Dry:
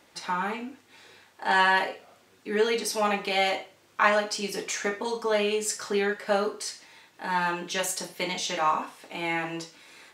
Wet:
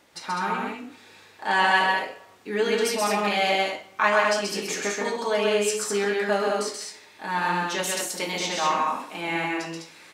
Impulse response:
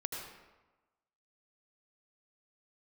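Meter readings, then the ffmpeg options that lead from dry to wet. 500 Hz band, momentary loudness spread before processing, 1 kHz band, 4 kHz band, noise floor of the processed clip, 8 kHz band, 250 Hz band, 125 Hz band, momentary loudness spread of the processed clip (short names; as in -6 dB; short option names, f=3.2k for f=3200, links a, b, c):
+3.0 dB, 14 LU, +3.0 dB, +3.0 dB, -52 dBFS, +3.0 dB, +3.0 dB, +3.0 dB, 13 LU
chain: -filter_complex "[0:a]aecho=1:1:131.2|204.1:0.708|0.631,asplit=2[a][b];[1:a]atrim=start_sample=2205,adelay=45[c];[b][c]afir=irnorm=-1:irlink=0,volume=-22dB[d];[a][d]amix=inputs=2:normalize=0"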